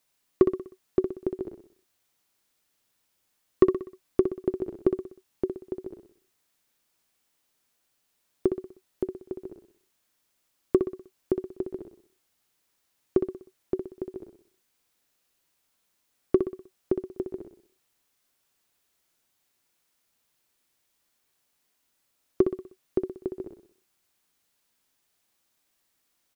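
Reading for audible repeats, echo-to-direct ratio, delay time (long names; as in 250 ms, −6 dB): 4, −6.5 dB, 62 ms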